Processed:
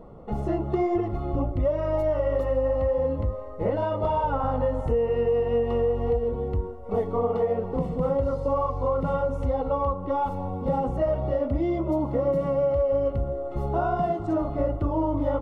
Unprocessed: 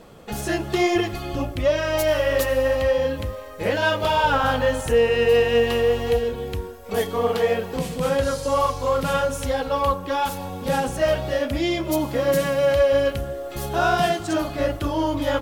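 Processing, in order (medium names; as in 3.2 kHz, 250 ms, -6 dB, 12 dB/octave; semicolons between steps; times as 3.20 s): bass shelf 65 Hz +8.5 dB; compression, threshold -20 dBFS, peak gain reduction 7 dB; Savitzky-Golay filter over 65 samples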